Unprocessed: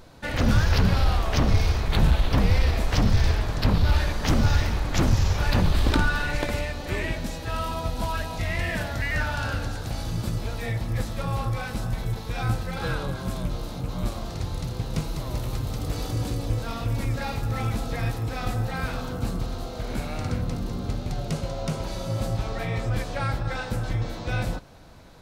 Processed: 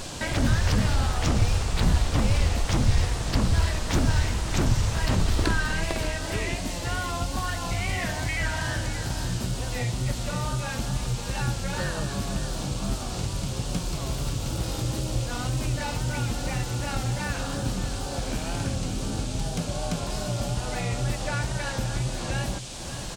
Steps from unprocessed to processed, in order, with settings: upward compressor, threshold -21 dBFS; band noise 2300–8200 Hz -39 dBFS; wow and flutter 57 cents; on a send: echo 0.625 s -12 dB; on the sum: speed mistake 44.1 kHz file played as 48 kHz; gain -2.5 dB

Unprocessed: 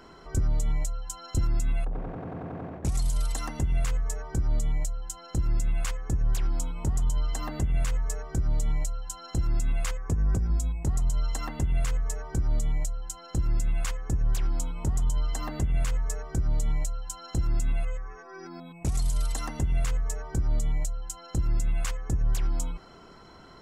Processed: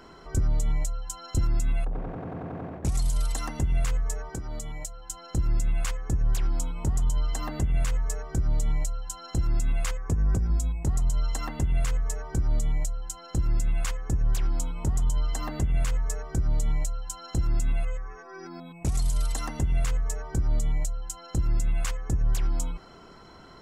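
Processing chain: 4.29–5.1 low shelf 180 Hz -12 dB; gain +1 dB

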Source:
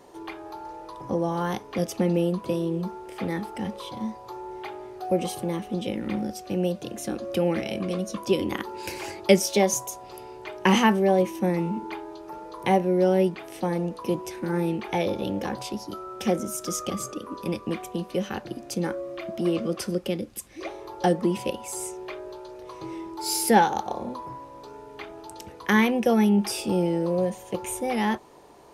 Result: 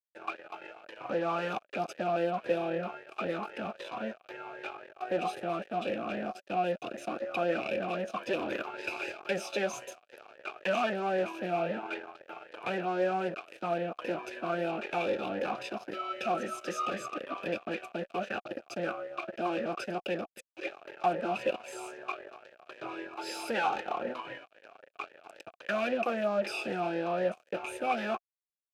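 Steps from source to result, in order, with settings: comb 0.8 ms, depth 78%; fuzz box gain 29 dB, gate -37 dBFS; vowel sweep a-e 3.8 Hz

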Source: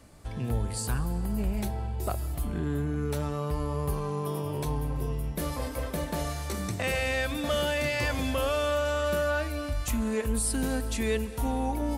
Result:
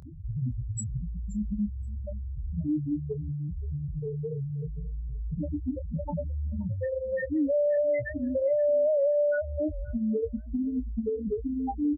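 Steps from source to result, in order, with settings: rattling part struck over -36 dBFS, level -30 dBFS; fuzz box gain 52 dB, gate -54 dBFS; loudest bins only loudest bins 2; HPF 460 Hz 6 dB/oct; compressor 2.5:1, threshold -32 dBFS, peak gain reduction 10 dB; bell 2600 Hz -9.5 dB 1.2 oct; doubler 24 ms -9.5 dB; on a send: feedback echo 0.527 s, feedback 16%, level -21 dB; on the sum: record warp 78 rpm, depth 100 cents; gain +3 dB

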